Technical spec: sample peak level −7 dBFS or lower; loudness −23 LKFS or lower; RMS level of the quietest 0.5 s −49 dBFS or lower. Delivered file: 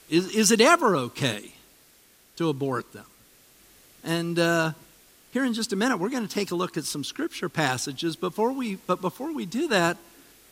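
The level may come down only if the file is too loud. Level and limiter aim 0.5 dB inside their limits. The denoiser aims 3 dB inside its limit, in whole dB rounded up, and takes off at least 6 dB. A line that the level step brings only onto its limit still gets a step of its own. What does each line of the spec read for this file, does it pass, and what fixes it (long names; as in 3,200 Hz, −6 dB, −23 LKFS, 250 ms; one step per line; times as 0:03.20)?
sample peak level −6.0 dBFS: out of spec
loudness −25.5 LKFS: in spec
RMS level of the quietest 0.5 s −58 dBFS: in spec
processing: brickwall limiter −7.5 dBFS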